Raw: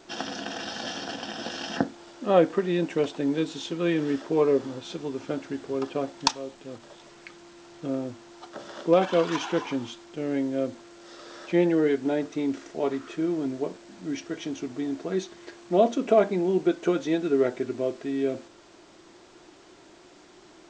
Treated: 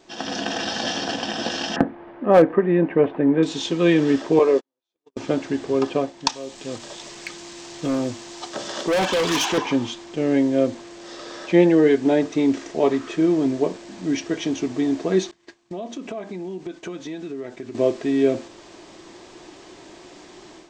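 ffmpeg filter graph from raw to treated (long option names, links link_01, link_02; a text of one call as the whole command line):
ffmpeg -i in.wav -filter_complex "[0:a]asettb=1/sr,asplit=3[link_01][link_02][link_03];[link_01]atrim=end=1.764[link_04];[link_02]atrim=start=1.76:end=3.43,asetpts=PTS-STARTPTS,afade=type=in:duration=0.004:curve=qsin,afade=type=out:start_time=1.666:duration=0.004:curve=qsin,lowpass=frequency=2000:width=0.5412,lowpass=frequency=2000:width=1.3066,volume=13dB,asoftclip=hard,volume=-13dB[link_05];[link_03]atrim=start=3.426[link_06];[link_04][link_05]acrossfade=duration=0.004:curve1=hsin:curve2=qsin[link_07];[link_07][link_06]acrossfade=duration=0.004:curve1=qsin:curve2=hsin,asettb=1/sr,asplit=3[link_08][link_09][link_10];[link_08]atrim=end=4.394[link_11];[link_09]atrim=start=4.39:end=5.17,asetpts=PTS-STARTPTS,afade=type=in:duration=0.004:curve=qsin,afade=type=out:start_time=0.776:duration=0.004:curve=qsin,highpass=390,agate=range=-54dB:threshold=-30dB:ratio=16:release=100:detection=peak,tremolo=f=100:d=0.261[link_12];[link_10]atrim=start=5.166[link_13];[link_11][link_12]acrossfade=duration=0.004:curve1=hsin:curve2=qsin[link_14];[link_14][link_13]acrossfade=duration=0.004:curve1=qsin:curve2=hsin,asettb=1/sr,asplit=3[link_15][link_16][link_17];[link_15]atrim=end=6.324[link_18];[link_16]atrim=start=6.32:end=9.58,asetpts=PTS-STARTPTS,afade=type=in:duration=0.004:curve=qsin,afade=type=out:start_time=3.256:duration=0.004:curve=qsin,highshelf=frequency=3200:gain=10.5,volume=26dB,asoftclip=hard,volume=-26dB[link_19];[link_17]atrim=start=9.576[link_20];[link_18][link_19]acrossfade=duration=0.004:curve1=hsin:curve2=qsin[link_21];[link_21][link_20]acrossfade=duration=0.004:curve1=qsin:curve2=hsin,asettb=1/sr,asplit=3[link_22][link_23][link_24];[link_22]atrim=end=15.314[link_25];[link_23]atrim=start=15.31:end=17.75,asetpts=PTS-STARTPTS,afade=type=in:duration=0.004:curve=qsin,afade=type=out:start_time=2.436:duration=0.004:curve=qsin,agate=range=-33dB:threshold=-35dB:ratio=3:release=100:detection=peak,equalizer=frequency=510:width=1.7:gain=-5.5,acompressor=threshold=-40dB:ratio=4:attack=3.2:release=140:knee=1:detection=peak[link_26];[link_24]atrim=start=17.746[link_27];[link_25][link_26]acrossfade=duration=0.004:curve1=hsin:curve2=qsin[link_28];[link_28][link_27]acrossfade=duration=0.004:curve1=qsin:curve2=hsin,bandreject=frequency=1400:width=9.1,dynaudnorm=framelen=170:gausssize=3:maxgain=10dB,volume=-1.5dB" out.wav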